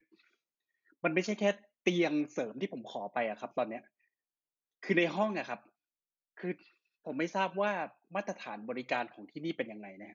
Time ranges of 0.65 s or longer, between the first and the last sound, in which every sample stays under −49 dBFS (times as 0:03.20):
0:03.80–0:04.83
0:05.58–0:06.37